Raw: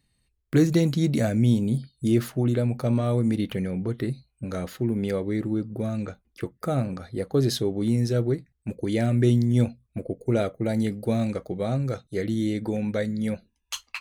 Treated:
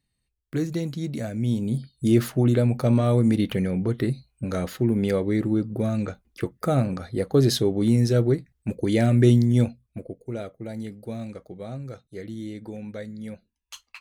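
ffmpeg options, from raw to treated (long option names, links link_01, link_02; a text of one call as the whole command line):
ffmpeg -i in.wav -af "volume=3.5dB,afade=type=in:start_time=1.33:duration=0.94:silence=0.298538,afade=type=out:start_time=9.31:duration=0.92:silence=0.237137" out.wav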